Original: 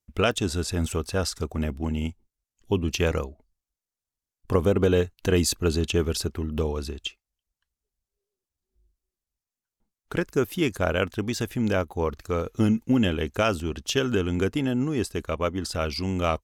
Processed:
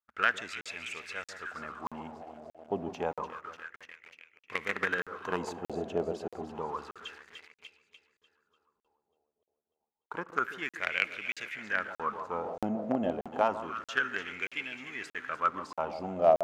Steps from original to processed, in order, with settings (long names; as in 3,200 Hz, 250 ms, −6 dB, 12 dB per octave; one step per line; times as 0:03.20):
parametric band 6,900 Hz +6 dB 0.28 octaves
delay that swaps between a low-pass and a high-pass 148 ms, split 1,100 Hz, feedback 79%, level −11 dB
in parallel at −10.5 dB: log-companded quantiser 2 bits
on the sum: LFO wah 0.29 Hz 660–2,300 Hz, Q 6.2
dynamic equaliser 190 Hz, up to +7 dB, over −57 dBFS, Q 1.1
on a send at −22.5 dB: convolution reverb RT60 0.95 s, pre-delay 46 ms
on the sum: regular buffer underruns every 0.63 s, samples 2,048, zero, from 0:00.61
level +6 dB